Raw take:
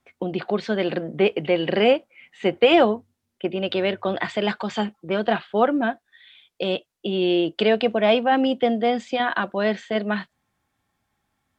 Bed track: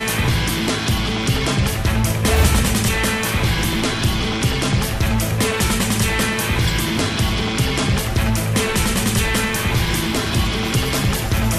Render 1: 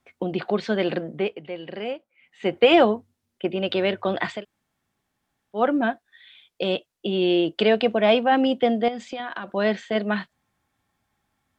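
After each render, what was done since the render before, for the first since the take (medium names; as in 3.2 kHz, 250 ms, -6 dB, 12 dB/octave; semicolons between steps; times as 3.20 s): 0.92–2.64 s: dip -13 dB, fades 0.48 s linear; 4.37–5.59 s: room tone, crossfade 0.16 s; 8.88–9.53 s: compression, threshold -28 dBFS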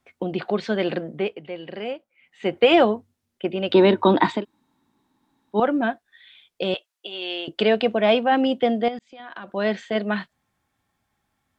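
3.74–5.60 s: small resonant body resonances 280/920/3800 Hz, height 17 dB, ringing for 25 ms; 6.74–7.48 s: high-pass 830 Hz; 8.99–9.92 s: fade in equal-power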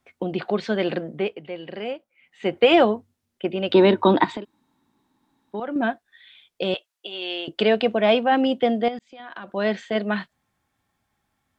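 4.24–5.76 s: compression, threshold -26 dBFS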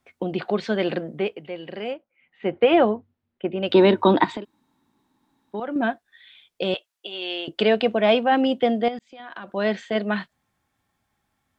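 1.94–3.63 s: distance through air 350 m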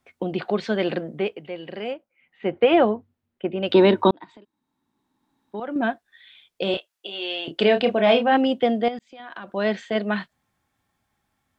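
4.11–5.89 s: fade in; 6.64–8.37 s: doubling 30 ms -6.5 dB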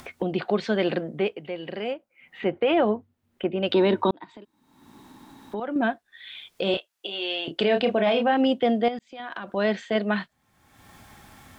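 peak limiter -12.5 dBFS, peak gain reduction 7.5 dB; upward compressor, threshold -29 dBFS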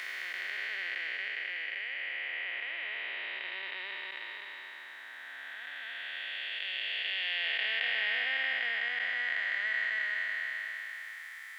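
spectral blur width 1340 ms; resonant high-pass 1.9 kHz, resonance Q 8.3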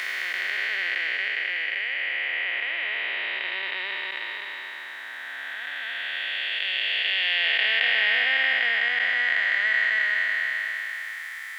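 trim +9.5 dB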